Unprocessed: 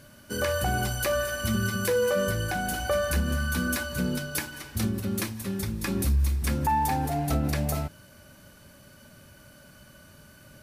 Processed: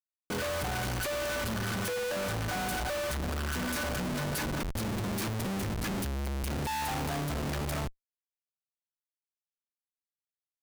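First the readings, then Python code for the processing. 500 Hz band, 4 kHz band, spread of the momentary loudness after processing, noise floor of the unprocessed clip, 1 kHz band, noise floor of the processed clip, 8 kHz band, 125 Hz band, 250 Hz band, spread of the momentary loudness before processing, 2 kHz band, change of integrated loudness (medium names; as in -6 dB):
-6.0 dB, -2.5 dB, 2 LU, -53 dBFS, -5.5 dB, under -85 dBFS, -4.5 dB, -6.0 dB, -5.0 dB, 6 LU, -4.5 dB, -5.0 dB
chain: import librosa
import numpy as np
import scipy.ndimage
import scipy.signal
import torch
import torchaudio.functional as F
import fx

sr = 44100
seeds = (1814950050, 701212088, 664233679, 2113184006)

y = fx.dynamic_eq(x, sr, hz=2800.0, q=5.0, threshold_db=-56.0, ratio=4.0, max_db=-6)
y = fx.schmitt(y, sr, flips_db=-36.5)
y = y * 10.0 ** (-4.0 / 20.0)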